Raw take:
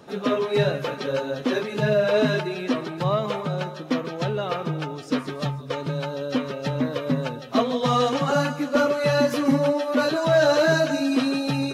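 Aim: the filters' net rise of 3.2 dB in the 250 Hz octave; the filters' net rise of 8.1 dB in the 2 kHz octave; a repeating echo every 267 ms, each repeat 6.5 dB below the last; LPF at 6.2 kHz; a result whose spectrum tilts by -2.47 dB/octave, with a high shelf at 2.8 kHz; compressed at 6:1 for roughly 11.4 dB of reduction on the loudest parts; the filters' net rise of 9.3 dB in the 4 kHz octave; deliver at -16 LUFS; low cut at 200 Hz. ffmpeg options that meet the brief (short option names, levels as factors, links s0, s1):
-af "highpass=200,lowpass=6200,equalizer=f=250:t=o:g=5,equalizer=f=2000:t=o:g=8,highshelf=f=2800:g=6,equalizer=f=4000:t=o:g=4.5,acompressor=threshold=0.0631:ratio=6,aecho=1:1:267|534|801|1068|1335|1602:0.473|0.222|0.105|0.0491|0.0231|0.0109,volume=3.35"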